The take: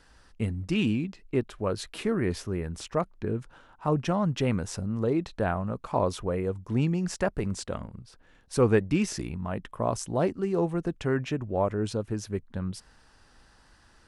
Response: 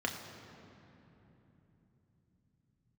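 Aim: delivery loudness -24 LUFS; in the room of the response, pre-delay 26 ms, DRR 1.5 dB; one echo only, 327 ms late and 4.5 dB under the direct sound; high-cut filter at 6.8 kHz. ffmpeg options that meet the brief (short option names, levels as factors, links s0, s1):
-filter_complex "[0:a]lowpass=6800,aecho=1:1:327:0.596,asplit=2[s0][s1];[1:a]atrim=start_sample=2205,adelay=26[s2];[s1][s2]afir=irnorm=-1:irlink=0,volume=0.447[s3];[s0][s3]amix=inputs=2:normalize=0,volume=1.12"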